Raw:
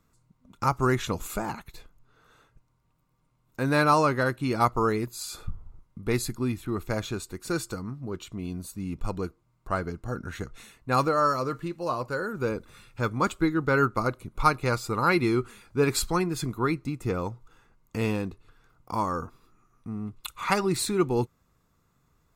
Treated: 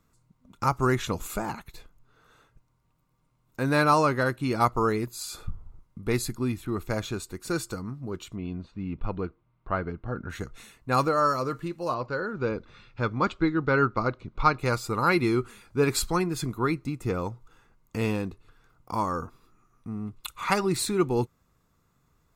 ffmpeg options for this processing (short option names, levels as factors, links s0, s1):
-filter_complex "[0:a]asettb=1/sr,asplit=3[s0][s1][s2];[s0]atrim=end=8.364[s3];[s1]atrim=start=8.36:end=10.3,asetpts=PTS-STARTPTS,afade=t=in:d=0.004:c=qsin,afade=t=out:st=1.936:d=0.004:c=qsin,lowpass=f=3400:w=0.5412,lowpass=f=3400:w=1.3066[s4];[s2]atrim=start=10.296[s5];[s3][s4]acrossfade=d=0.004:c1=hsin:c2=qsin[s6];[s6][s5]acrossfade=d=0.004:c1=qsin:c2=hsin,asettb=1/sr,asplit=3[s7][s8][s9];[s7]atrim=end=11.944[s10];[s8]atrim=start=11.94:end=14.59,asetpts=PTS-STARTPTS,afade=t=in:d=0.004:c=qsin,afade=t=out:st=2.646:d=0.004:c=qsin,lowpass=f=5000:w=0.5412,lowpass=f=5000:w=1.3066[s11];[s9]atrim=start=14.586[s12];[s10][s11]acrossfade=d=0.004:c1=hsin:c2=qsin[s13];[s13][s12]acrossfade=d=0.004:c1=qsin:c2=hsin"